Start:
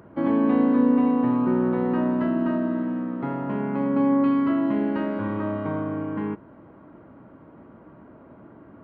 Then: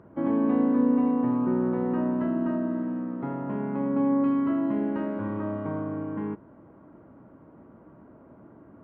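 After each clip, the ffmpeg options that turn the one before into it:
-af "lowpass=f=1400:p=1,volume=0.708"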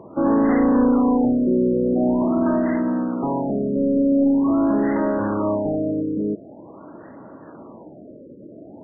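-filter_complex "[0:a]acrusher=samples=11:mix=1:aa=0.000001:lfo=1:lforange=17.6:lforate=2.3,asplit=2[s0][s1];[s1]highpass=f=720:p=1,volume=10,asoftclip=type=tanh:threshold=0.251[s2];[s0][s2]amix=inputs=2:normalize=0,lowpass=f=1100:p=1,volume=0.501,afftfilt=real='re*lt(b*sr/1024,590*pow(2100/590,0.5+0.5*sin(2*PI*0.45*pts/sr)))':imag='im*lt(b*sr/1024,590*pow(2100/590,0.5+0.5*sin(2*PI*0.45*pts/sr)))':win_size=1024:overlap=0.75,volume=1.58"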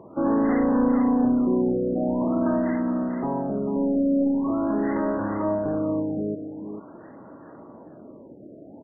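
-af "aecho=1:1:445:0.376,volume=0.631"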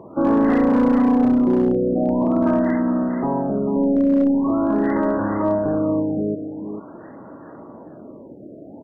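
-af "asoftclip=type=hard:threshold=0.15,volume=1.78"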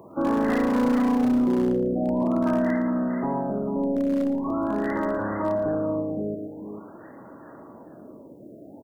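-filter_complex "[0:a]acrossover=split=420[s0][s1];[s1]crystalizer=i=5:c=0[s2];[s0][s2]amix=inputs=2:normalize=0,aecho=1:1:114|228:0.282|0.0479,volume=0.501"

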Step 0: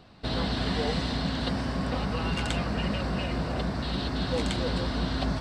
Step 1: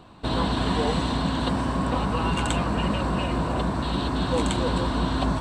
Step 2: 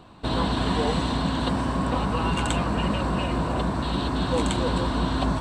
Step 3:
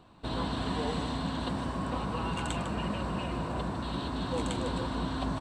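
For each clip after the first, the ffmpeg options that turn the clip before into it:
-af "equalizer=f=315:t=o:w=0.33:g=5,equalizer=f=1000:t=o:w=0.33:g=9,equalizer=f=2000:t=o:w=0.33:g=-5,equalizer=f=5000:t=o:w=0.33:g=-11,equalizer=f=8000:t=o:w=0.33:g=7,volume=1.5"
-af anull
-af "aecho=1:1:152:0.316,volume=0.376"

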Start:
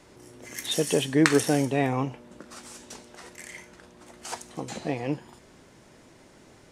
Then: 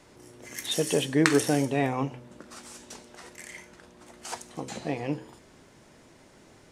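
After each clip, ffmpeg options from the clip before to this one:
-af "bandreject=f=63.17:t=h:w=4,bandreject=f=126.34:t=h:w=4,bandreject=f=189.51:t=h:w=4,bandreject=f=252.68:t=h:w=4,bandreject=f=315.85:t=h:w=4,bandreject=f=379.02:t=h:w=4,bandreject=f=442.19:t=h:w=4,bandreject=f=505.36:t=h:w=4,bandreject=f=568.53:t=h:w=4,volume=0.891"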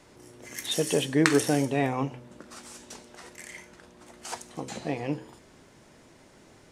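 -af anull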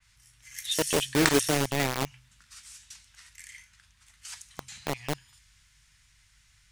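-filter_complex "[0:a]aeval=exprs='val(0)+0.000708*(sin(2*PI*50*n/s)+sin(2*PI*2*50*n/s)/2+sin(2*PI*3*50*n/s)/3+sin(2*PI*4*50*n/s)/4+sin(2*PI*5*50*n/s)/5)':c=same,acrossover=split=110|1500[s0][s1][s2];[s1]acrusher=bits=3:mix=0:aa=0.000001[s3];[s0][s3][s2]amix=inputs=3:normalize=0,adynamicequalizer=threshold=0.0112:dfrequency=2700:dqfactor=0.7:tfrequency=2700:tqfactor=0.7:attack=5:release=100:ratio=0.375:range=2:mode=boostabove:tftype=highshelf,volume=0.794"

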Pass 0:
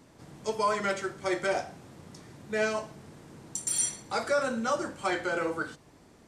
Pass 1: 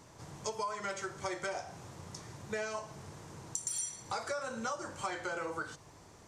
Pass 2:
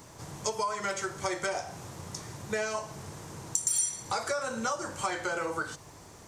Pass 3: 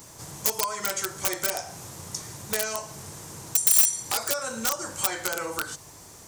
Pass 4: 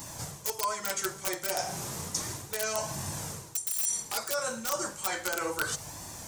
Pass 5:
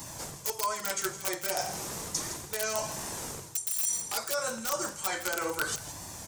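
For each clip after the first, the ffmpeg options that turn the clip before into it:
-af "equalizer=f=100:t=o:w=0.67:g=5,equalizer=f=250:t=o:w=0.67:g=-7,equalizer=f=1000:t=o:w=0.67:g=5,equalizer=f=6300:t=o:w=0.67:g=7,acompressor=threshold=0.02:ratio=10"
-af "highshelf=f=11000:g=11.5,volume=1.88"
-af "aeval=exprs='(mod(12.6*val(0)+1,2)-1)/12.6':c=same,crystalizer=i=2:c=0"
-af "areverse,acompressor=threshold=0.0251:ratio=16,areverse,flanger=delay=1.1:depth=4.5:regen=-45:speed=0.33:shape=sinusoidal,volume=2.66"
-filter_complex "[0:a]acrossover=split=200|1600[s0][s1][s2];[s0]aeval=exprs='(mod(112*val(0)+1,2)-1)/112':c=same[s3];[s2]aecho=1:1:164:0.237[s4];[s3][s1][s4]amix=inputs=3:normalize=0"

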